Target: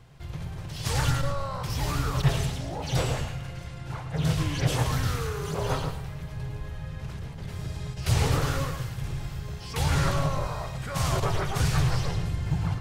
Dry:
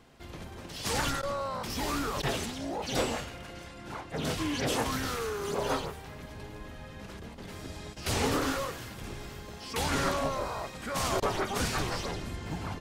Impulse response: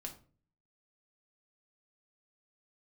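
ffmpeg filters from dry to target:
-filter_complex "[0:a]lowshelf=f=180:t=q:w=3:g=8,asplit=2[s0][s1];[1:a]atrim=start_sample=2205,adelay=108[s2];[s1][s2]afir=irnorm=-1:irlink=0,volume=0.596[s3];[s0][s3]amix=inputs=2:normalize=0"

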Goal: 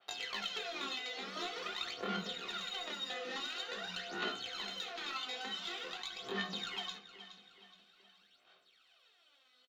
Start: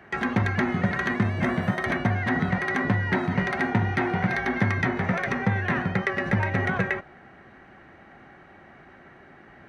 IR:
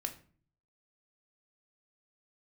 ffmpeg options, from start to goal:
-filter_complex "[0:a]afwtdn=0.0282,highpass=f=1400:p=1,highshelf=f=5800:g=5.5,acompressor=threshold=0.0141:ratio=16,asetrate=85689,aresample=44100,atempo=0.514651,aphaser=in_gain=1:out_gain=1:delay=4:decay=0.76:speed=0.47:type=sinusoidal,asplit=2[s0][s1];[s1]adelay=421,lowpass=f=4500:p=1,volume=0.178,asplit=2[s2][s3];[s3]adelay=421,lowpass=f=4500:p=1,volume=0.48,asplit=2[s4][s5];[s5]adelay=421,lowpass=f=4500:p=1,volume=0.48,asplit=2[s6][s7];[s7]adelay=421,lowpass=f=4500:p=1,volume=0.48[s8];[s0][s2][s4][s6][s8]amix=inputs=5:normalize=0[s9];[1:a]atrim=start_sample=2205,asetrate=70560,aresample=44100[s10];[s9][s10]afir=irnorm=-1:irlink=0,adynamicequalizer=threshold=0.00251:dfrequency=2300:dqfactor=0.7:tfrequency=2300:tqfactor=0.7:attack=5:release=100:ratio=0.375:range=3:mode=cutabove:tftype=highshelf,volume=1.58"

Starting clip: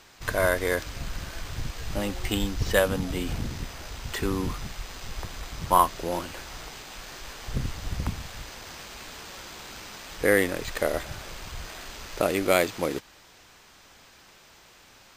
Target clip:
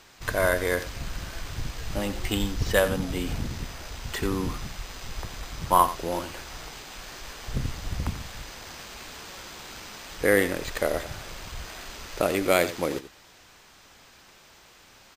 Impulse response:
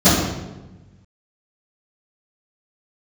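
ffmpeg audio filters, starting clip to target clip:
-af "aecho=1:1:89:0.211"

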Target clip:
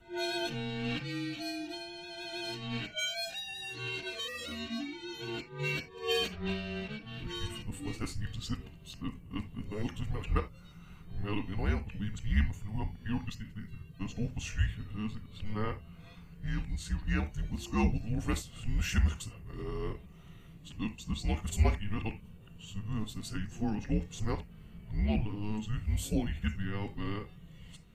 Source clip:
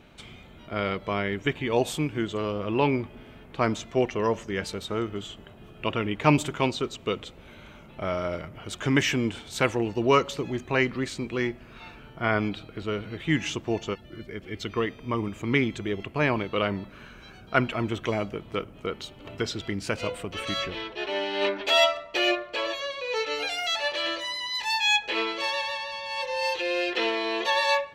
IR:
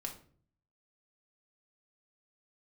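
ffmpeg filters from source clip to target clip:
-filter_complex "[0:a]areverse,equalizer=f=1100:w=0.52:g=-12.5,asplit=2[s0][s1];[s1]asuperstop=centerf=3700:order=20:qfactor=2.8[s2];[1:a]atrim=start_sample=2205,atrim=end_sample=3969[s3];[s2][s3]afir=irnorm=-1:irlink=0,volume=1.12[s4];[s0][s4]amix=inputs=2:normalize=0,afreqshift=-210,volume=0.501"

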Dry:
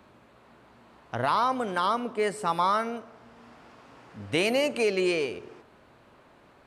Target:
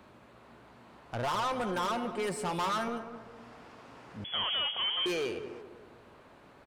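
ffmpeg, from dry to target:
-filter_complex "[0:a]asettb=1/sr,asplit=3[s0][s1][s2];[s0]atrim=end=1.234[s3];[s1]atrim=start=1.23:end=2.88,asetpts=PTS-STARTPTS,afade=t=in:d=0.004:c=qsin,afade=t=out:st=1.646:d=0.004:c=qsin,aecho=1:1:5.6:0.63,atrim=end_sample=72765[s4];[s2]atrim=start=2.876[s5];[s3][s4]acrossfade=d=0.004:c1=hsin:c2=qsin[s6];[s6][s5]acrossfade=d=0.004:c1=qsin:c2=hsin,asoftclip=type=tanh:threshold=0.0355,asettb=1/sr,asplit=3[s7][s8][s9];[s7]atrim=end=4.244[s10];[s8]atrim=start=4.24:end=5.06,asetpts=PTS-STARTPTS,afade=t=in:d=0.004:c=qsin,afade=t=out:st=0.816:d=0.004:c=qsin,lowpass=f=3000:t=q:w=0.5098,lowpass=f=3000:t=q:w=0.6013,lowpass=f=3000:t=q:w=0.9,lowpass=f=3000:t=q:w=2.563,afreqshift=-3500[s11];[s9]atrim=start=5.056[s12];[s10][s11]acrossfade=d=0.004:c1=hsin:c2=qsin[s13];[s13][s12]acrossfade=d=0.004:c1=qsin:c2=hsin,asplit=2[s14][s15];[s15]adelay=196,lowpass=f=1400:p=1,volume=0.316,asplit=2[s16][s17];[s17]adelay=196,lowpass=f=1400:p=1,volume=0.47,asplit=2[s18][s19];[s19]adelay=196,lowpass=f=1400:p=1,volume=0.47,asplit=2[s20][s21];[s21]adelay=196,lowpass=f=1400:p=1,volume=0.47,asplit=2[s22][s23];[s23]adelay=196,lowpass=f=1400:p=1,volume=0.47[s24];[s16][s18][s20][s22][s24]amix=inputs=5:normalize=0[s25];[s14][s25]amix=inputs=2:normalize=0"

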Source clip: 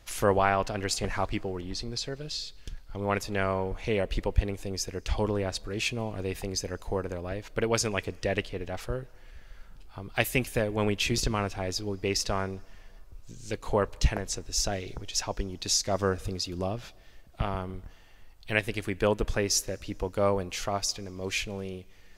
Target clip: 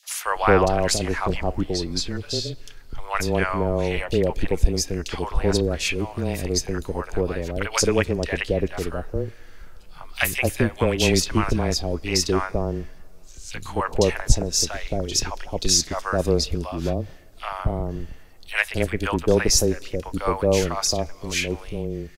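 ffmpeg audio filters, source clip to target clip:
-filter_complex "[0:a]afreqshift=-21,acrossover=split=760|3000[s0][s1][s2];[s1]adelay=30[s3];[s0]adelay=250[s4];[s4][s3][s2]amix=inputs=3:normalize=0,volume=2.51"

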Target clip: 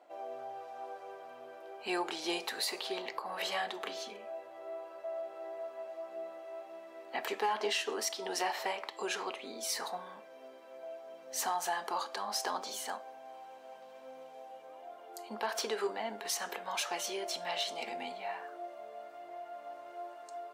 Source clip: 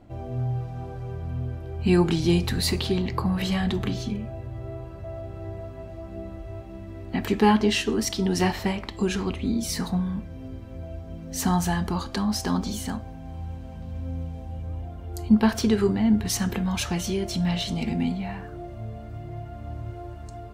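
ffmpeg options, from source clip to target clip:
-af "highpass=f=570:w=0.5412,highpass=f=570:w=1.3066,tiltshelf=f=770:g=4.5,alimiter=limit=0.0708:level=0:latency=1:release=142,asoftclip=type=hard:threshold=0.0596"

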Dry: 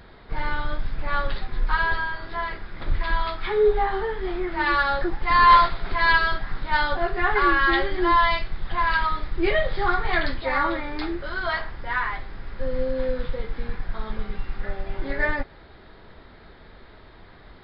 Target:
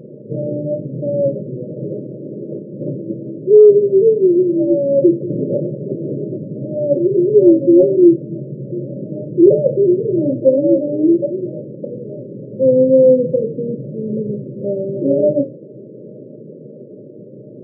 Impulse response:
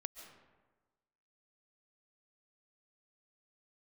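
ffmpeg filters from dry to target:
-af "afftfilt=real='re*between(b*sr/4096,110,620)':imag='im*between(b*sr/4096,110,620)':win_size=4096:overlap=0.75,bandreject=f=60:t=h:w=6,bandreject=f=120:t=h:w=6,bandreject=f=180:t=h:w=6,bandreject=f=240:t=h:w=6,bandreject=f=300:t=h:w=6,flanger=delay=7.3:depth=9.4:regen=-69:speed=0.28:shape=triangular,apsyclip=15.8,volume=0.841"

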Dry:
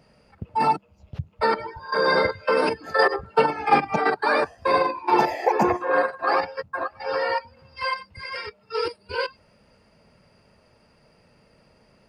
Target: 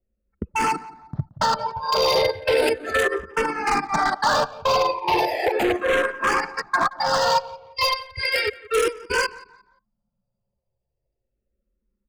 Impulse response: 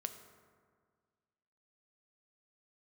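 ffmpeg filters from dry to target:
-filter_complex "[0:a]anlmdn=0.398,agate=range=0.316:threshold=0.00447:ratio=16:detection=peak,bass=f=250:g=-5,treble=f=4000:g=7,asplit=2[s0][s1];[s1]acompressor=threshold=0.0282:ratio=6,volume=1.41[s2];[s0][s2]amix=inputs=2:normalize=0,alimiter=limit=0.237:level=0:latency=1:release=483,aeval=exprs='0.126*(abs(mod(val(0)/0.126+3,4)-2)-1)':c=same,asplit=2[s3][s4];[s4]adelay=175,lowpass=f=2600:p=1,volume=0.119,asplit=2[s5][s6];[s6]adelay=175,lowpass=f=2600:p=1,volume=0.35,asplit=2[s7][s8];[s8]adelay=175,lowpass=f=2600:p=1,volume=0.35[s9];[s3][s5][s7][s9]amix=inputs=4:normalize=0,asplit=2[s10][s11];[s11]afreqshift=-0.35[s12];[s10][s12]amix=inputs=2:normalize=1,volume=2.24"

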